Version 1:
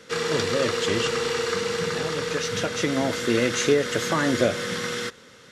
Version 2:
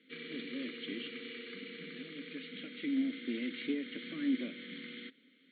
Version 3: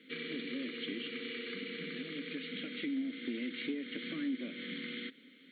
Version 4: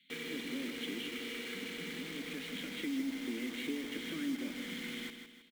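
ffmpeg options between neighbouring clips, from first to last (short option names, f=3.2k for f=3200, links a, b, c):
-filter_complex "[0:a]aeval=exprs='(tanh(5.01*val(0)+0.65)-tanh(0.65))/5.01':c=same,afftfilt=real='re*between(b*sr/4096,140,4500)':imag='im*between(b*sr/4096,140,4500)':win_size=4096:overlap=0.75,asplit=3[a][b][c];[a]bandpass=f=270:t=q:w=8,volume=0dB[d];[b]bandpass=f=2.29k:t=q:w=8,volume=-6dB[e];[c]bandpass=f=3.01k:t=q:w=8,volume=-9dB[f];[d][e][f]amix=inputs=3:normalize=0"
-af "acompressor=threshold=-46dB:ratio=2.5,volume=7dB"
-filter_complex "[0:a]acrossover=split=150|2300[a][b][c];[b]acrusher=bits=7:mix=0:aa=0.000001[d];[a][d][c]amix=inputs=3:normalize=0,aecho=1:1:159|318|477|636|795:0.398|0.167|0.0702|0.0295|0.0124,volume=-1dB"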